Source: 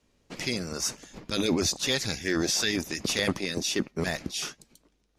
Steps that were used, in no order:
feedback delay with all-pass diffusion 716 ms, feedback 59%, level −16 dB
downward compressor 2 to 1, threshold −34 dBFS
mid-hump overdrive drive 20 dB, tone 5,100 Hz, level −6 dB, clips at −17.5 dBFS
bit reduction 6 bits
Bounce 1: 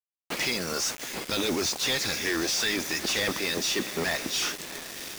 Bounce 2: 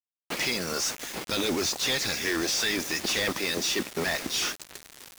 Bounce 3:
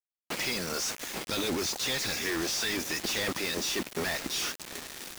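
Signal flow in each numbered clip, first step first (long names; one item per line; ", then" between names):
downward compressor, then feedback delay with all-pass diffusion, then mid-hump overdrive, then bit reduction
downward compressor, then mid-hump overdrive, then feedback delay with all-pass diffusion, then bit reduction
mid-hump overdrive, then feedback delay with all-pass diffusion, then downward compressor, then bit reduction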